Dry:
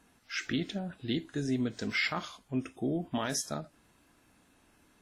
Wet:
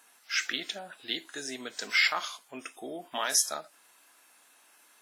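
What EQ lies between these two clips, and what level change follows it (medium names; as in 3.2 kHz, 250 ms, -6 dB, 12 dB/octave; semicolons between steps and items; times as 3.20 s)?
high-pass 750 Hz 12 dB/octave; treble shelf 8 kHz +10 dB; +5.5 dB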